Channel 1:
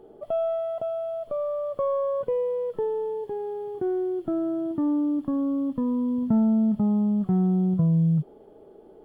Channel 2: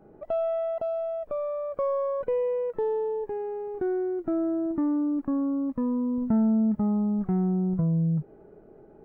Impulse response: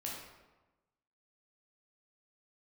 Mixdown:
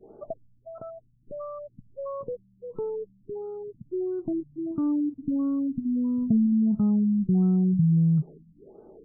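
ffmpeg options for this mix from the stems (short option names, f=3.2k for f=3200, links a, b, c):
-filter_complex "[0:a]adynamicequalizer=threshold=0.01:dfrequency=700:dqfactor=1:tfrequency=700:tqfactor=1:attack=5:release=100:ratio=0.375:range=3.5:mode=cutabove:tftype=bell,volume=-0.5dB,asplit=2[a][b];[b]volume=-23dB[c];[1:a]acompressor=threshold=-29dB:ratio=6,volume=-9dB[d];[2:a]atrim=start_sample=2205[e];[c][e]afir=irnorm=-1:irlink=0[f];[a][d][f]amix=inputs=3:normalize=0,afftfilt=real='re*lt(b*sr/1024,250*pow(1600/250,0.5+0.5*sin(2*PI*1.5*pts/sr)))':imag='im*lt(b*sr/1024,250*pow(1600/250,0.5+0.5*sin(2*PI*1.5*pts/sr)))':win_size=1024:overlap=0.75"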